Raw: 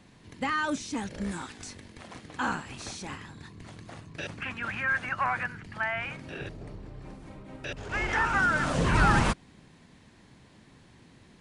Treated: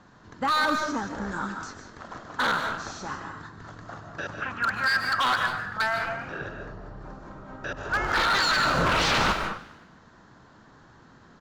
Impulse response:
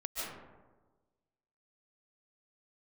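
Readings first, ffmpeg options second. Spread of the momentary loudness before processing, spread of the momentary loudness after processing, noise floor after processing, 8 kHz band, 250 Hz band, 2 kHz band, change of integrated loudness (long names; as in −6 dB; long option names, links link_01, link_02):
22 LU, 21 LU, −54 dBFS, +3.0 dB, −0.5 dB, +3.5 dB, +3.5 dB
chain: -filter_complex "[0:a]highshelf=frequency=1800:width_type=q:width=3:gain=-7.5,aresample=16000,aresample=44100,tiltshelf=frequency=670:gain=-4,aeval=exprs='0.0841*(abs(mod(val(0)/0.0841+3,4)-2)-1)':channel_layout=same,asplit=2[link_01][link_02];[1:a]atrim=start_sample=2205,afade=type=out:start_time=0.31:duration=0.01,atrim=end_sample=14112[link_03];[link_02][link_03]afir=irnorm=-1:irlink=0,volume=-3.5dB[link_04];[link_01][link_04]amix=inputs=2:normalize=0,acrossover=split=5400[link_05][link_06];[link_06]acompressor=threshold=-41dB:ratio=4:attack=1:release=60[link_07];[link_05][link_07]amix=inputs=2:normalize=0,asplit=6[link_08][link_09][link_10][link_11][link_12][link_13];[link_09]adelay=101,afreqshift=40,volume=-19dB[link_14];[link_10]adelay=202,afreqshift=80,volume=-23.3dB[link_15];[link_11]adelay=303,afreqshift=120,volume=-27.6dB[link_16];[link_12]adelay=404,afreqshift=160,volume=-31.9dB[link_17];[link_13]adelay=505,afreqshift=200,volume=-36.2dB[link_18];[link_08][link_14][link_15][link_16][link_17][link_18]amix=inputs=6:normalize=0"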